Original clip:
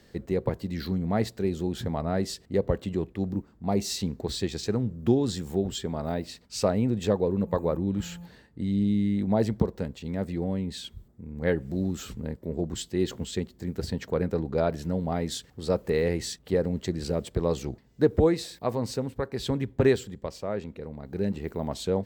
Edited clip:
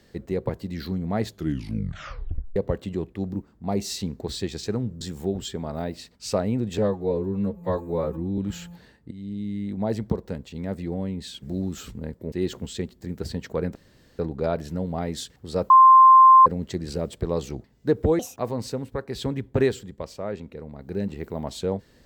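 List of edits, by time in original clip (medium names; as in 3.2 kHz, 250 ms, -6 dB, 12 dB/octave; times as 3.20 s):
1.21 s: tape stop 1.35 s
5.01–5.31 s: delete
7.08–7.88 s: stretch 2×
8.61–10.14 s: fade in equal-power, from -13.5 dB
10.92–11.64 s: delete
12.54–12.90 s: delete
14.33 s: insert room tone 0.44 s
15.84–16.60 s: bleep 1.05 kHz -8 dBFS
18.33–18.63 s: speed 151%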